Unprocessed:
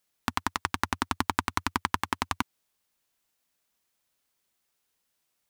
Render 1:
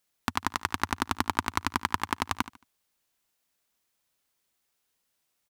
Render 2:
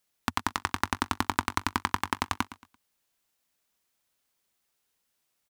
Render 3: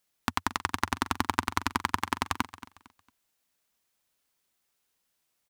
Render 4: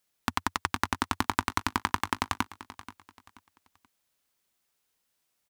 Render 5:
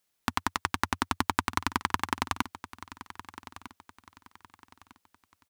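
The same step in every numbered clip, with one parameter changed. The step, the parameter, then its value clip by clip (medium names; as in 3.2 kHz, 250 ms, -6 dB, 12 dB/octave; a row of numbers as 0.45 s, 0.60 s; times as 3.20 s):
feedback delay, time: 74 ms, 113 ms, 227 ms, 481 ms, 1252 ms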